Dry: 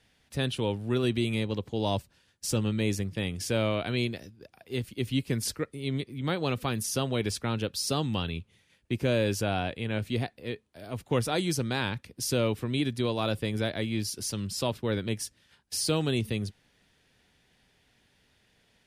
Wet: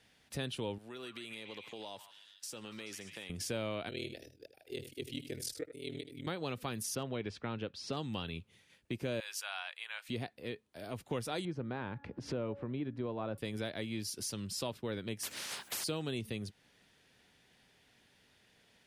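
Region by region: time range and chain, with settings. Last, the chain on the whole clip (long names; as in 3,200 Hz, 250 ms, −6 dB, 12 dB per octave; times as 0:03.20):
0:00.78–0:03.30: high-pass filter 770 Hz 6 dB per octave + downward compressor 4 to 1, threshold −42 dBFS + echo through a band-pass that steps 144 ms, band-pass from 1,500 Hz, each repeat 0.7 octaves, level −3.5 dB
0:03.89–0:06.27: phaser with its sweep stopped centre 450 Hz, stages 4 + ring modulation 20 Hz + single-tap delay 79 ms −12 dB
0:06.95–0:07.97: low-pass filter 3,000 Hz + hard clipping −16.5 dBFS
0:09.20–0:10.09: high-pass filter 1,000 Hz 24 dB per octave + multiband upward and downward expander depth 40%
0:11.45–0:13.38: low-pass filter 1,400 Hz + hum removal 281.8 Hz, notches 6 + upward compression, threshold −29 dBFS
0:15.23–0:15.84: high-pass filter 1,100 Hz 6 dB per octave + every bin compressed towards the loudest bin 10 to 1
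whole clip: low-shelf EQ 81 Hz −11 dB; downward compressor 2 to 1, threshold −41 dBFS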